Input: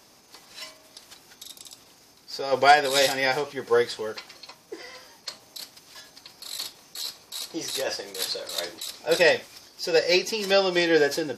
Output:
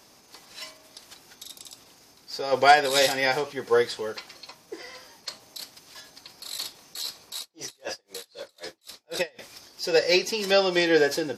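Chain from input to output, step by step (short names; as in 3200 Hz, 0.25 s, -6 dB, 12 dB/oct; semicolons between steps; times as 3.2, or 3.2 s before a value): 7.39–9.39 dB-linear tremolo 3.9 Hz, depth 37 dB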